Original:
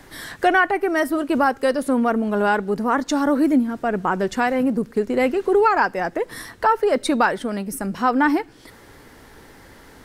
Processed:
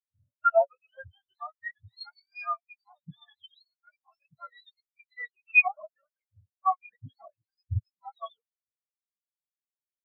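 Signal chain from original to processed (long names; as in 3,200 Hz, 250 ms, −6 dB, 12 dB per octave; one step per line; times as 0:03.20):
frequency axis turned over on the octave scale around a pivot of 1,000 Hz
every bin expanded away from the loudest bin 4 to 1
level −3 dB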